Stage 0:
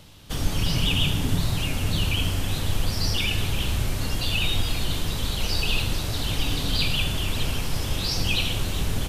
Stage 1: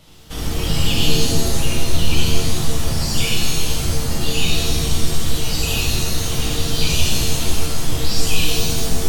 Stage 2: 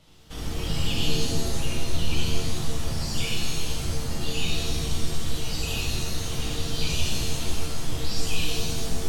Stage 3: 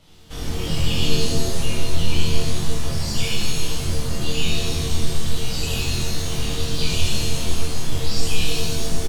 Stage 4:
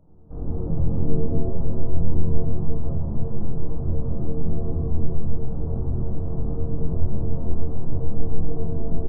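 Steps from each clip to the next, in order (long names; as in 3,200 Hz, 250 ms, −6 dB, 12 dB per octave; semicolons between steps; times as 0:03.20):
reverb reduction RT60 1.5 s; reverb with rising layers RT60 1.6 s, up +7 semitones, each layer −2 dB, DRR −6 dB; level −2.5 dB
high-shelf EQ 12,000 Hz −9 dB; level −8 dB
double-tracking delay 24 ms −3 dB; level +2.5 dB
Gaussian smoothing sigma 11 samples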